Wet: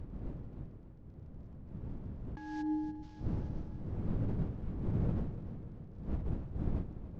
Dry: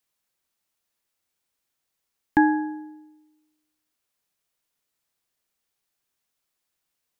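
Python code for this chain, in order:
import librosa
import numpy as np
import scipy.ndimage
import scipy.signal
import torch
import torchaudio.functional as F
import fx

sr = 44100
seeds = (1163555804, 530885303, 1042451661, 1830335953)

y = fx.cvsd(x, sr, bps=32000)
y = fx.dmg_wind(y, sr, seeds[0], corner_hz=150.0, level_db=-38.0)
y = fx.over_compress(y, sr, threshold_db=-33.0, ratio=-1.0)
y = fx.moving_average(y, sr, points=36, at=(2.61, 3.02), fade=0.02)
y = fx.echo_feedback(y, sr, ms=291, feedback_pct=59, wet_db=-12)
y = y * 10.0 ** (-1.5 / 20.0)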